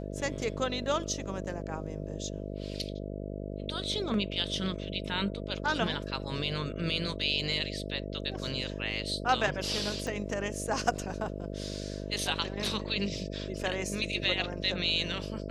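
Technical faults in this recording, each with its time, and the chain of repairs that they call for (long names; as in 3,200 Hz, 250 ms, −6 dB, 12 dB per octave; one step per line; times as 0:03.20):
mains buzz 50 Hz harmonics 13 −38 dBFS
0:10.07: click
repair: click removal
hum removal 50 Hz, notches 13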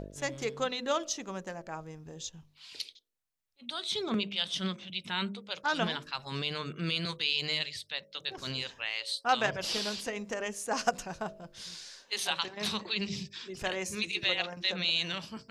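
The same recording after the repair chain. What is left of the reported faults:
none of them is left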